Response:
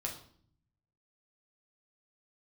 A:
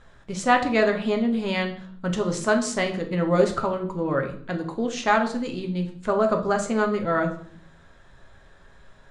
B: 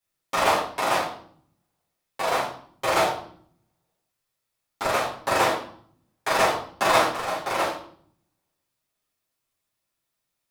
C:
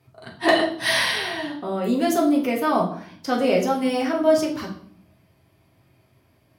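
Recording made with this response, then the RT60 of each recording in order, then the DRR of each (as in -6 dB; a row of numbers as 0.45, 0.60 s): C; 0.55, 0.55, 0.55 s; 3.0, -9.0, -1.5 dB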